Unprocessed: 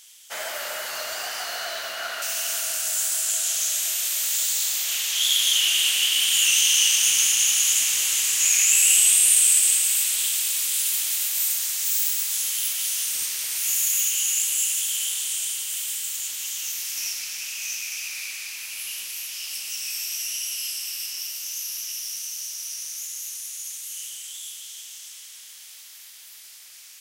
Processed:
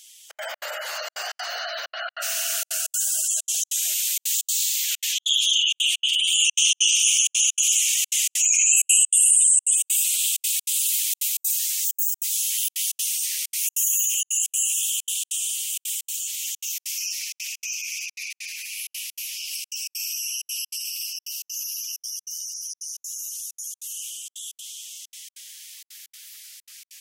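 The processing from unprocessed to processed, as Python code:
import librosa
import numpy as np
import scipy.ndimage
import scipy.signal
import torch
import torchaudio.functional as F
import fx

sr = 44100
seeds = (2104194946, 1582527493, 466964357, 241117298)

y = fx.spec_gate(x, sr, threshold_db=-15, keep='strong')
y = fx.step_gate(y, sr, bpm=194, pattern='xxxx.xx.xx', floor_db=-60.0, edge_ms=4.5)
y = F.gain(torch.from_numpy(y), 1.5).numpy()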